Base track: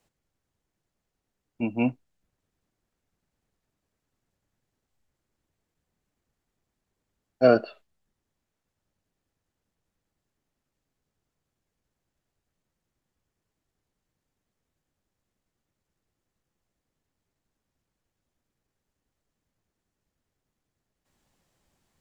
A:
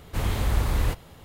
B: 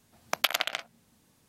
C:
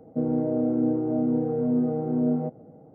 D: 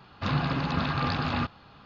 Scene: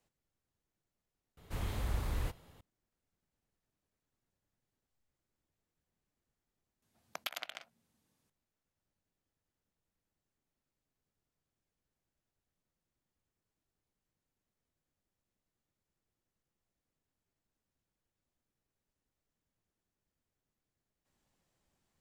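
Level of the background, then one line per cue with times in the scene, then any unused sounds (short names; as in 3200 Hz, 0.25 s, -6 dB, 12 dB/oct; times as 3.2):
base track -7.5 dB
1.37 replace with A -12 dB
6.82 replace with B -14.5 dB
not used: C, D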